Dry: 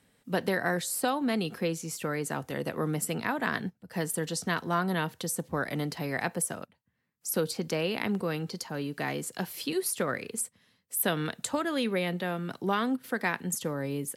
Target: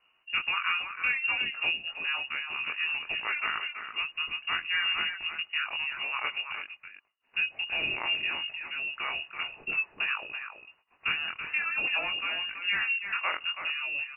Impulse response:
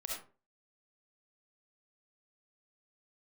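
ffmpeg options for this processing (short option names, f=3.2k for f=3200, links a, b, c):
-filter_complex "[0:a]flanger=delay=18:depth=6.6:speed=0.57,asplit=2[a][b];[b]adelay=330,highpass=300,lowpass=3.4k,asoftclip=type=hard:threshold=-26dB,volume=-7dB[c];[a][c]amix=inputs=2:normalize=0,lowpass=f=2.6k:t=q:w=0.5098,lowpass=f=2.6k:t=q:w=0.6013,lowpass=f=2.6k:t=q:w=0.9,lowpass=f=2.6k:t=q:w=2.563,afreqshift=-3000,volume=2dB"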